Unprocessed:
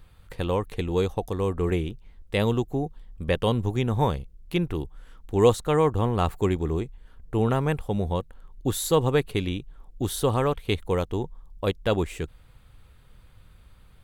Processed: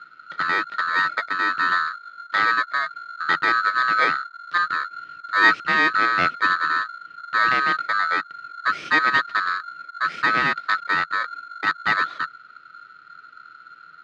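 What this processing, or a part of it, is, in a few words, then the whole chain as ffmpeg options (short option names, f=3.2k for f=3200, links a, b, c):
ring modulator pedal into a guitar cabinet: -af "aeval=exprs='val(0)*sgn(sin(2*PI*1400*n/s))':c=same,highpass=110,equalizer=f=160:t=q:w=4:g=8,equalizer=f=320:t=q:w=4:g=6,equalizer=f=920:t=q:w=4:g=-9,equalizer=f=1.3k:t=q:w=4:g=9,equalizer=f=1.9k:t=q:w=4:g=4,lowpass=f=4k:w=0.5412,lowpass=f=4k:w=1.3066"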